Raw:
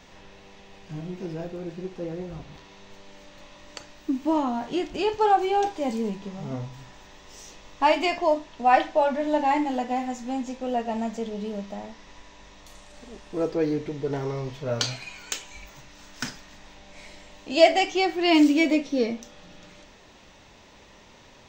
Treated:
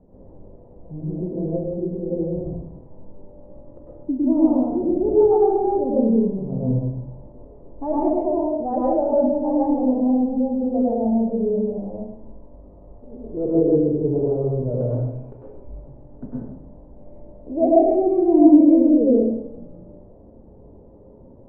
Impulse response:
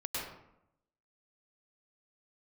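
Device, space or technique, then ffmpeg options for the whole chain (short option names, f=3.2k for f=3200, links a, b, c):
next room: -filter_complex "[0:a]lowpass=f=560:w=0.5412,lowpass=f=560:w=1.3066[a];[1:a]atrim=start_sample=2205[b];[a][b]afir=irnorm=-1:irlink=0,asettb=1/sr,asplit=3[c][d][e];[c]atrim=end=6.684[f];[d]atrim=start=6.68:end=7.45,asetpts=PTS-STARTPTS,afade=t=in:d=0.004:c=qsin,afade=t=out:st=0.766:d=0.004:c=qsin,tiltshelf=f=1.5k:g=3[g];[e]atrim=start=7.446[h];[f][g]acrossfade=d=0.004:c1=hsin:c2=qsin[i];[i][h]acrossfade=d=0.004:c1=qsin:c2=hsin,volume=5.5dB"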